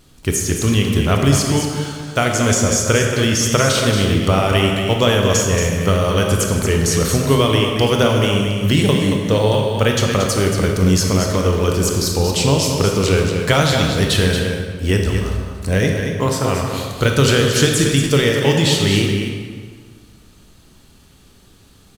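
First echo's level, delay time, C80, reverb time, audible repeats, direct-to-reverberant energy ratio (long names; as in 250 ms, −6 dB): −7.0 dB, 229 ms, 2.5 dB, 1.7 s, 1, 0.0 dB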